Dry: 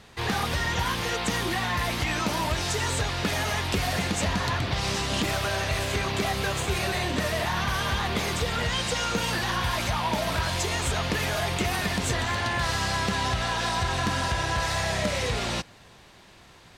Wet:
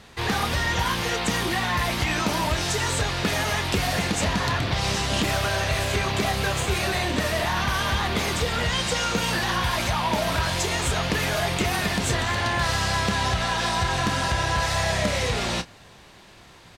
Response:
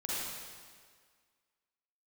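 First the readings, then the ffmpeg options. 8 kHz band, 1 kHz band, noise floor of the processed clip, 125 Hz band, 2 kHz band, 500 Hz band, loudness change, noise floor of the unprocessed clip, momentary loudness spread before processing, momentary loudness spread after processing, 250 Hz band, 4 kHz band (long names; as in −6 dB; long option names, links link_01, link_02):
+3.0 dB, +2.5 dB, −49 dBFS, +2.5 dB, +3.0 dB, +2.5 dB, +2.5 dB, −52 dBFS, 1 LU, 1 LU, +2.5 dB, +3.0 dB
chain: -filter_complex "[0:a]asplit=2[link_01][link_02];[link_02]adelay=29,volume=-11.5dB[link_03];[link_01][link_03]amix=inputs=2:normalize=0,volume=2.5dB"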